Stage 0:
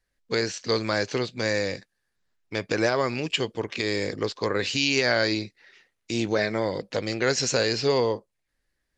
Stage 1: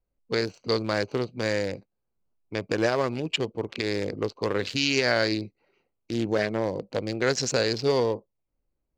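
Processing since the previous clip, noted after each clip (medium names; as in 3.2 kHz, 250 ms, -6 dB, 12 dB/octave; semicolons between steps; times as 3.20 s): local Wiener filter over 25 samples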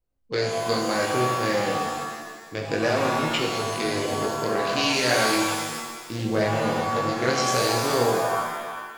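chorus 0.32 Hz, delay 18.5 ms, depth 6.2 ms; pitch-shifted reverb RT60 1.4 s, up +7 st, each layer -2 dB, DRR 1 dB; trim +2 dB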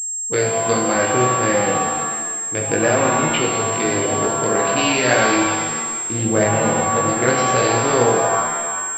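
class-D stage that switches slowly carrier 7.5 kHz; trim +6 dB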